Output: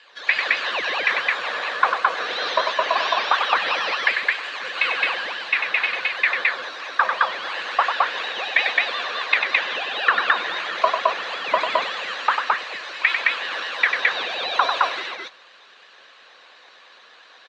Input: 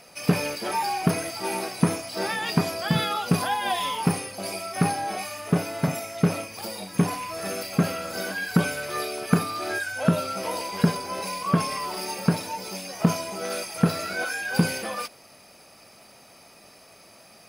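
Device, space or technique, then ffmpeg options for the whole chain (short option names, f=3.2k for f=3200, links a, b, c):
voice changer toy: -filter_complex "[0:a]aeval=exprs='val(0)*sin(2*PI*1600*n/s+1600*0.5/2.9*sin(2*PI*2.9*n/s))':c=same,highpass=450,equalizer=f=520:t=q:w=4:g=8,equalizer=f=750:t=q:w=4:g=3,equalizer=f=1.1k:t=q:w=4:g=7,equalizer=f=1.7k:t=q:w=4:g=7,equalizer=f=2.6k:t=q:w=4:g=3,equalizer=f=3.9k:t=q:w=4:g=8,lowpass=f=4.9k:w=0.5412,lowpass=f=4.9k:w=1.3066,asettb=1/sr,asplit=3[a][b][c];[a]atrim=end=8.644[d];[b]atrim=start=8.64:end=9.75,asetpts=PTS-STARTPTS,afade=t=in:d=0.004:c=qsin,afade=t=out:st=1.106:d=0.004:c=qsin,lowpass=f=8.8k:w=0.5412,lowpass=f=8.8k:w=1.3066[e];[c]atrim=start=9.746[f];[d][e]acrossfade=d=0.004:c1=hsin:c2=qsin[g];[g][f]acrossfade=d=0.004:c1=qsin:c2=hsin,aecho=1:1:96.21|215.7:0.501|0.891,volume=-1dB"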